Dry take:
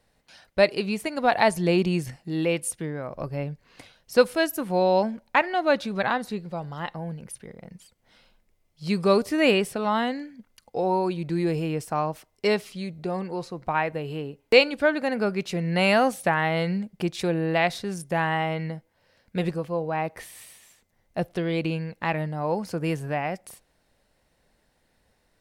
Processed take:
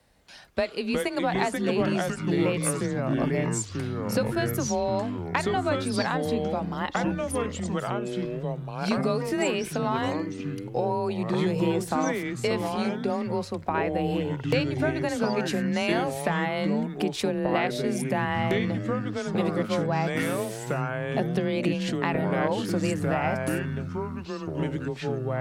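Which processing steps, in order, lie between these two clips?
compression 10:1, threshold -27 dBFS, peak gain reduction 16.5 dB; frequency shift +26 Hz; ever faster or slower copies 211 ms, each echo -4 st, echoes 3; trim +3.5 dB

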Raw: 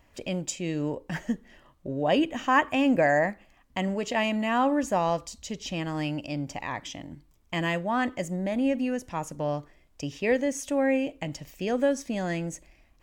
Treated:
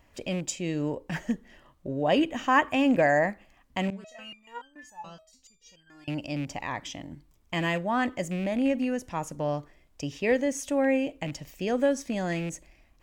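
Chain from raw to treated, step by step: rattle on loud lows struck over -31 dBFS, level -32 dBFS; 3.90–6.08 s: resonator arpeggio 7 Hz 190–1600 Hz

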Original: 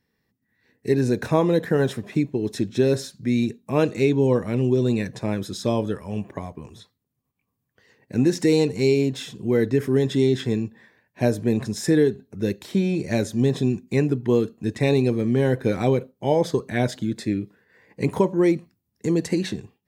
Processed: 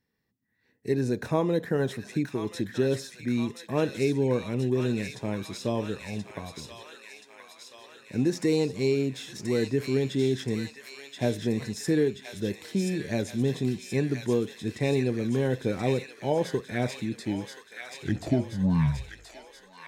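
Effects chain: tape stop on the ending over 2.30 s; feedback echo behind a high-pass 1029 ms, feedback 64%, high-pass 1.4 kHz, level -3 dB; trim -6 dB

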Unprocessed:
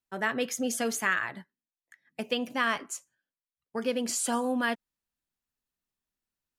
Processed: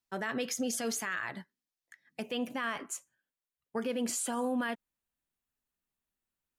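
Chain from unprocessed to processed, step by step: peaking EQ 5 kHz +4 dB, from 2.22 s -5.5 dB; peak limiter -25 dBFS, peak gain reduction 12 dB

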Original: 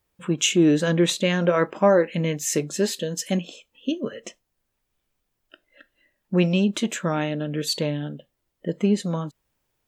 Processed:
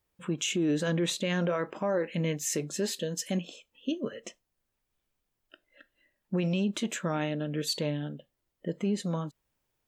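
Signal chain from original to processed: peak limiter -15.5 dBFS, peak gain reduction 9 dB; trim -5 dB

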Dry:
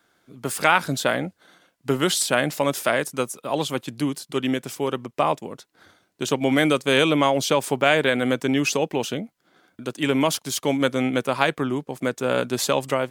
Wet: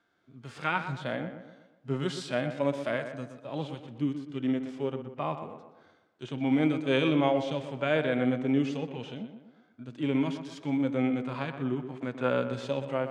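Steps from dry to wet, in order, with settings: 11.76–12.30 s: peaking EQ 1.4 kHz +8.5 dB 2.7 oct; harmonic-percussive split percussive -18 dB; distance through air 120 m; on a send: tape echo 122 ms, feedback 51%, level -8 dB, low-pass 2.3 kHz; on the sum: trim -3.5 dB

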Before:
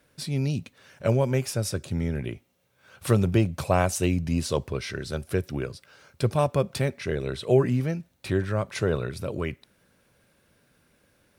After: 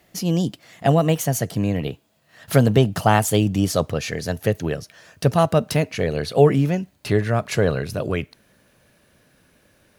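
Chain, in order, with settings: gliding tape speed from 124% -> 104%; trim +6 dB

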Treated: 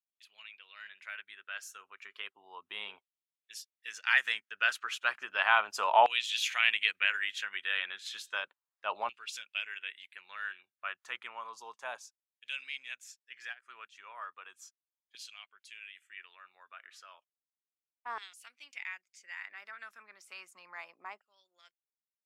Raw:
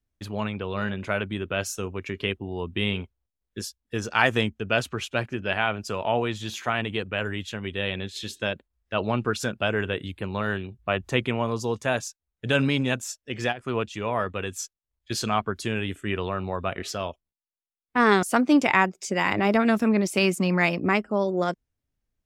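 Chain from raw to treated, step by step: Doppler pass-by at 6.40 s, 7 m/s, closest 6.2 m; LFO high-pass saw down 0.33 Hz 850–2900 Hz

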